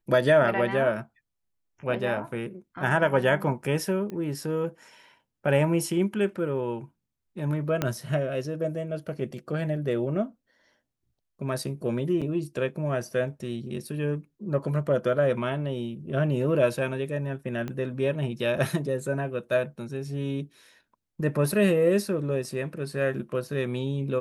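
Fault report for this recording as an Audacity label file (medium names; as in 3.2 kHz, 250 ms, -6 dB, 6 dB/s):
4.100000	4.100000	pop -24 dBFS
7.820000	7.820000	pop -11 dBFS
12.210000	12.220000	dropout 6.2 ms
17.680000	17.680000	pop -21 dBFS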